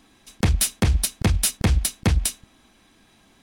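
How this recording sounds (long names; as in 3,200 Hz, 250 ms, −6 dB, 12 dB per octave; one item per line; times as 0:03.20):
background noise floor −58 dBFS
spectral slope −4.0 dB per octave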